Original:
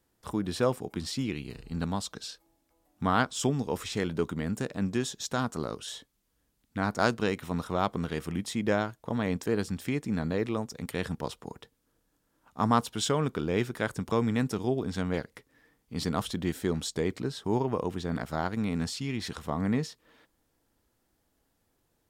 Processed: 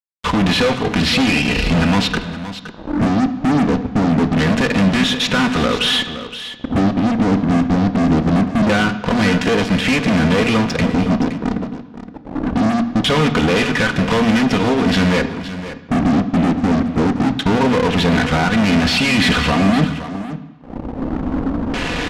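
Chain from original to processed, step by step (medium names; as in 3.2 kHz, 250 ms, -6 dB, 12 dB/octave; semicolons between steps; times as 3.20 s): recorder AGC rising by 21 dB/s; gate -53 dBFS, range -7 dB; treble shelf 2.1 kHz +8 dB; comb 4.1 ms, depth 52%; in parallel at +1 dB: compression, threshold -38 dBFS, peak gain reduction 21 dB; on the sum: hard clipper -18 dBFS, distortion -13 dB; LFO low-pass square 0.23 Hz 290–2600 Hz; fuzz box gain 33 dB, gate -40 dBFS; distance through air 59 m; delay 518 ms -12.5 dB; on a send at -10 dB: reverberation RT60 1.1 s, pre-delay 3 ms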